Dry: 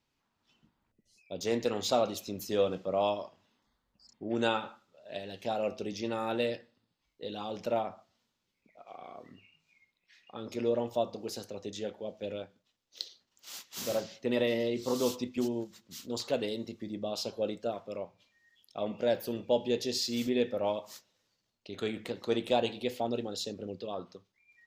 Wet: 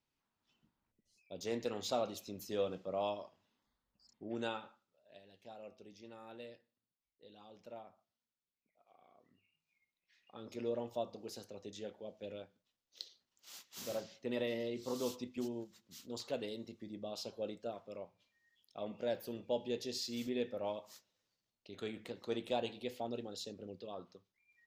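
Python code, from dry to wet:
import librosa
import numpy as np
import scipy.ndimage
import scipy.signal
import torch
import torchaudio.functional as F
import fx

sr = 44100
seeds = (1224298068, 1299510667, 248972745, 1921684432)

y = fx.gain(x, sr, db=fx.line((4.25, -8.0), (5.23, -19.5), (9.22, -19.5), (10.41, -8.5)))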